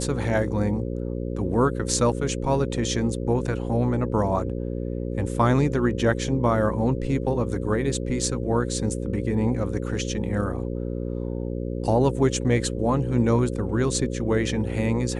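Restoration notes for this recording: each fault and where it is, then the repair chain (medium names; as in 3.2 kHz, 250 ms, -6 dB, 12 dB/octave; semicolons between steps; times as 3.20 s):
buzz 60 Hz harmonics 9 -29 dBFS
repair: de-hum 60 Hz, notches 9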